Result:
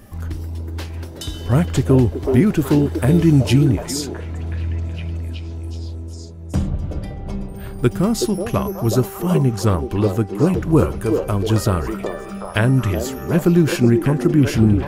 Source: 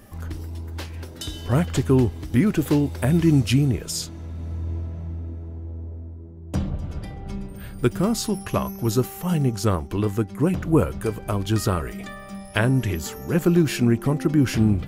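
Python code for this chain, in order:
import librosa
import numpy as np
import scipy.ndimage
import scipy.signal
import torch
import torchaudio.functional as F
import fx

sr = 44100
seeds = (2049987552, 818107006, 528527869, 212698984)

y = fx.low_shelf(x, sr, hz=220.0, db=4.0)
y = fx.echo_stepped(y, sr, ms=373, hz=470.0, octaves=0.7, feedback_pct=70, wet_db=-1)
y = y * 10.0 ** (2.0 / 20.0)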